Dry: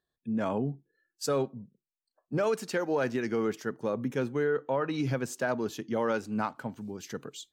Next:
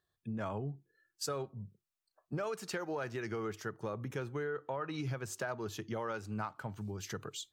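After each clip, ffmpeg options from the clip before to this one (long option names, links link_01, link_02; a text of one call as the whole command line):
ffmpeg -i in.wav -af "equalizer=frequency=100:width_type=o:width=0.33:gain=11,equalizer=frequency=250:width_type=o:width=0.33:gain=-12,equalizer=frequency=500:width_type=o:width=0.33:gain=-4,equalizer=frequency=1250:width_type=o:width=0.33:gain=4,acompressor=threshold=-39dB:ratio=3,volume=1.5dB" out.wav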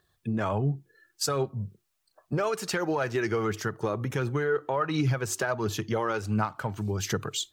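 ffmpeg -i in.wav -filter_complex "[0:a]aphaser=in_gain=1:out_gain=1:delay=3.2:decay=0.33:speed=1.4:type=triangular,asplit=2[link_01][link_02];[link_02]alimiter=level_in=9dB:limit=-24dB:level=0:latency=1:release=272,volume=-9dB,volume=-1dB[link_03];[link_01][link_03]amix=inputs=2:normalize=0,volume=6.5dB" out.wav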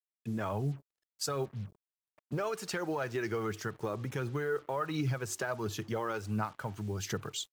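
ffmpeg -i in.wav -af "acrusher=bits=7:mix=0:aa=0.5,volume=-6.5dB" out.wav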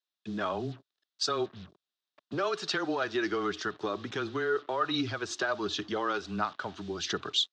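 ffmpeg -i in.wav -af "highpass=320,equalizer=frequency=520:width_type=q:width=4:gain=-8,equalizer=frequency=900:width_type=q:width=4:gain=-6,equalizer=frequency=2200:width_type=q:width=4:gain=-7,equalizer=frequency=3700:width_type=q:width=4:gain=8,lowpass=frequency=5400:width=0.5412,lowpass=frequency=5400:width=1.3066,afreqshift=-15,volume=7.5dB" out.wav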